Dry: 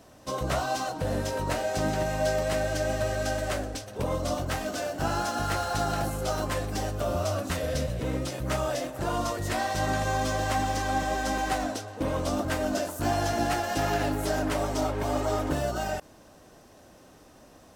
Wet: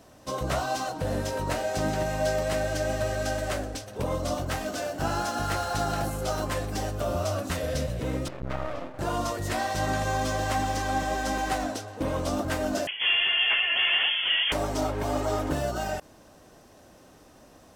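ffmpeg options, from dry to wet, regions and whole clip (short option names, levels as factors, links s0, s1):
-filter_complex "[0:a]asettb=1/sr,asplit=3[s0][s1][s2];[s0]atrim=end=8.284[s3];[s1]atrim=start=8.28:end=8.99,asetpts=PTS-STARTPTS,afade=t=in:d=0.004:c=qsin,afade=t=out:st=0.706:d=0.004:c=qsin,lowpass=2100,aeval=exprs='max(val(0),0)':c=same[s4];[s2]atrim=start=8.986[s5];[s3][s4]acrossfade=d=0.004:c1=hsin:c2=qsin[s6];[s6][s5]acrossfade=d=0.004:c1=qsin:c2=hsin,asettb=1/sr,asplit=3[s7][s8][s9];[s7]atrim=end=12.874[s10];[s8]atrim=start=12.87:end=14.52,asetpts=PTS-STARTPTS,afade=t=in:d=0.004:c=qsin,afade=t=out:st=1.646:d=0.004:c=qsin,asplit=2[s11][s12];[s12]highpass=f=720:p=1,volume=5.01,asoftclip=type=tanh:threshold=0.2[s13];[s11][s13]amix=inputs=2:normalize=0,lowpass=f=2700:p=1,volume=0.501,lowpass=f=3000:t=q:w=0.5098,lowpass=f=3000:t=q:w=0.6013,lowpass=f=3000:t=q:w=0.9,lowpass=f=3000:t=q:w=2.563,afreqshift=-3500[s14];[s9]atrim=start=14.516[s15];[s10][s14]acrossfade=d=0.004:c1=hsin:c2=qsin[s16];[s16][s15]acrossfade=d=0.004:c1=qsin:c2=hsin"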